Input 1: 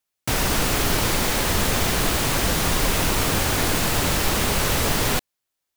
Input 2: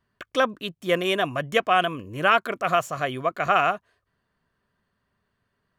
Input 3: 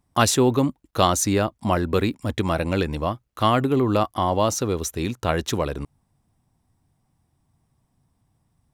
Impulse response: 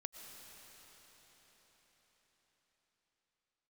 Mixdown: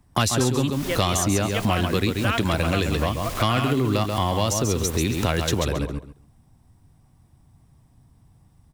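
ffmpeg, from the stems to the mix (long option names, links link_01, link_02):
-filter_complex "[0:a]aeval=exprs='0.422*sin(PI/2*2*val(0)/0.422)':channel_layout=same,adelay=450,volume=-19dB[link_01];[1:a]volume=-2dB[link_02];[2:a]lowshelf=frequency=160:gain=7,acontrast=66,volume=0dB,asplit=3[link_03][link_04][link_05];[link_04]volume=-7dB[link_06];[link_05]apad=whole_len=273990[link_07];[link_01][link_07]sidechaincompress=threshold=-21dB:ratio=8:attack=7.2:release=226[link_08];[link_06]aecho=0:1:135|270|405:1|0.19|0.0361[link_09];[link_08][link_02][link_03][link_09]amix=inputs=4:normalize=0,acrossover=split=180|2100[link_10][link_11][link_12];[link_10]acompressor=threshold=-26dB:ratio=4[link_13];[link_11]acompressor=threshold=-24dB:ratio=4[link_14];[link_12]acompressor=threshold=-25dB:ratio=4[link_15];[link_13][link_14][link_15]amix=inputs=3:normalize=0"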